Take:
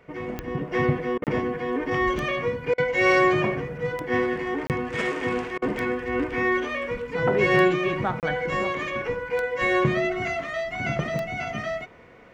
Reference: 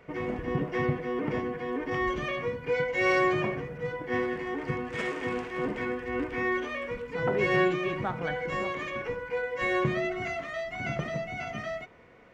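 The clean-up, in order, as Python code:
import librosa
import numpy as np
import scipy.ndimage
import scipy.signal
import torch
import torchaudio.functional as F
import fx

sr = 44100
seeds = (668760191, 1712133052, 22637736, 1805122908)

y = fx.fix_declick_ar(x, sr, threshold=10.0)
y = fx.fix_interpolate(y, sr, at_s=(1.24, 4.67, 8.2), length_ms=28.0)
y = fx.fix_interpolate(y, sr, at_s=(1.18, 2.74, 5.58), length_ms=39.0)
y = fx.fix_level(y, sr, at_s=0.71, step_db=-5.5)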